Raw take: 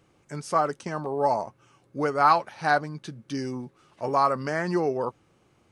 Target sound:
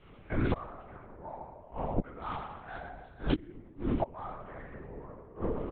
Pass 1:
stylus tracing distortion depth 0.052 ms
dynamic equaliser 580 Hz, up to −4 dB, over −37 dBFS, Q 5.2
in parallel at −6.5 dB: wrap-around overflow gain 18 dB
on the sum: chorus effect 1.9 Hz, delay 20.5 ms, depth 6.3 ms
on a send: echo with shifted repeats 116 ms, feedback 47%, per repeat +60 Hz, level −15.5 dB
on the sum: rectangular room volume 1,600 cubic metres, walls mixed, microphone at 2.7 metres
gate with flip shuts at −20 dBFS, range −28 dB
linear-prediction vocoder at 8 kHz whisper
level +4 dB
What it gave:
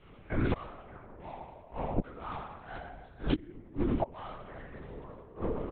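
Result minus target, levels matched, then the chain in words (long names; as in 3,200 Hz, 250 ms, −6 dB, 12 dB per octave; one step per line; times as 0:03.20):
wrap-around overflow: distortion +12 dB
stylus tracing distortion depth 0.052 ms
dynamic equaliser 580 Hz, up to −4 dB, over −37 dBFS, Q 5.2
in parallel at −6.5 dB: wrap-around overflow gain 10.5 dB
on the sum: chorus effect 1.9 Hz, delay 20.5 ms, depth 6.3 ms
on a send: echo with shifted repeats 116 ms, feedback 47%, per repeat +60 Hz, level −15.5 dB
on the sum: rectangular room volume 1,600 cubic metres, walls mixed, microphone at 2.7 metres
gate with flip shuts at −20 dBFS, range −28 dB
linear-prediction vocoder at 8 kHz whisper
level +4 dB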